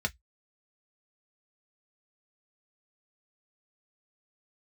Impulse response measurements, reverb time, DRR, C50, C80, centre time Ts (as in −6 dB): 0.10 s, 3.5 dB, 31.0 dB, 46.5 dB, 4 ms